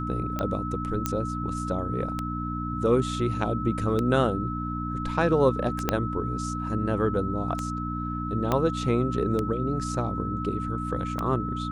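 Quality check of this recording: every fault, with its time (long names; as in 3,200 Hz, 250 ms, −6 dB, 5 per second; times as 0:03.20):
mains hum 60 Hz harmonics 5 −32 dBFS
scratch tick 33 1/3 rpm −15 dBFS
whistle 1,300 Hz −33 dBFS
0:01.06: click −11 dBFS
0:05.89: click −8 dBFS
0:08.52: click −11 dBFS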